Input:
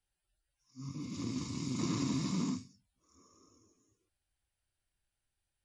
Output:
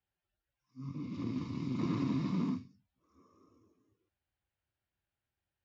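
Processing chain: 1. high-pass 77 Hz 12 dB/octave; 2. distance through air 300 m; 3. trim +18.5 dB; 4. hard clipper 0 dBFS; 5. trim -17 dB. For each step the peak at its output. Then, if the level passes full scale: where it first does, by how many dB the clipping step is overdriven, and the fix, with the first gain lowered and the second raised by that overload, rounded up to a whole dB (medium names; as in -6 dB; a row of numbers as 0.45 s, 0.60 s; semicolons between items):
-21.5 dBFS, -22.5 dBFS, -4.0 dBFS, -4.0 dBFS, -21.0 dBFS; nothing clips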